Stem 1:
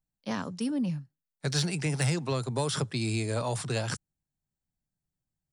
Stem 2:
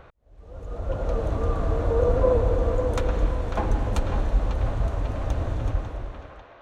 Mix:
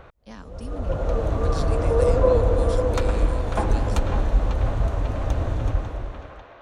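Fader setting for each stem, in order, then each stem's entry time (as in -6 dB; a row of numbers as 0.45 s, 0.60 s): -9.5 dB, +2.5 dB; 0.00 s, 0.00 s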